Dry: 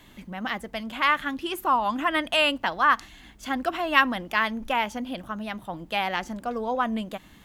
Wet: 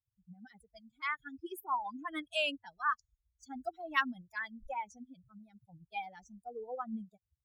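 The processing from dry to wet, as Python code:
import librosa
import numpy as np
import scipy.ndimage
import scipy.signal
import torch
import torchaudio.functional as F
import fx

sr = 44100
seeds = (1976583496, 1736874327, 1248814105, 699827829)

y = fx.bin_expand(x, sr, power=3.0)
y = y * 10.0 ** (-7.5 / 20.0)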